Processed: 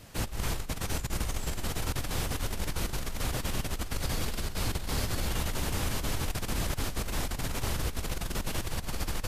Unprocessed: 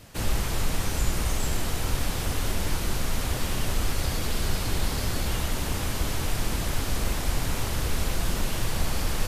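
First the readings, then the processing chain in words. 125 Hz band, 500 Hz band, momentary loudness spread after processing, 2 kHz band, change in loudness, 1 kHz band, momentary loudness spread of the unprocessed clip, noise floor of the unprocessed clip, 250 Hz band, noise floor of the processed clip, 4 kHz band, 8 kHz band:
-4.5 dB, -4.0 dB, 3 LU, -4.5 dB, -4.5 dB, -4.0 dB, 1 LU, -30 dBFS, -4.0 dB, -37 dBFS, -4.5 dB, -4.5 dB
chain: negative-ratio compressor -26 dBFS, ratio -0.5; gain -4 dB

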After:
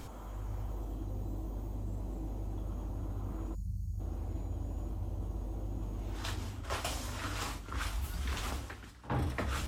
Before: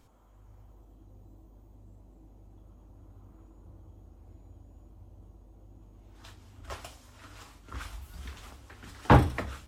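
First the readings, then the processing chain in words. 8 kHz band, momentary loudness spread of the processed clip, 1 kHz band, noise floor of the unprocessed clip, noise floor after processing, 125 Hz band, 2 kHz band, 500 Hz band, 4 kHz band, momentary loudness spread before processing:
+7.5 dB, 5 LU, -9.0 dB, -56 dBFS, -46 dBFS, -3.5 dB, -4.0 dB, -7.5 dB, +3.5 dB, 23 LU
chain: spectral gain 3.55–4, 210–4100 Hz -30 dB; reverse; compressor 8:1, threshold -49 dBFS, peak gain reduction 33.5 dB; reverse; hum 60 Hz, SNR 21 dB; pre-echo 63 ms -17 dB; gain +15.5 dB

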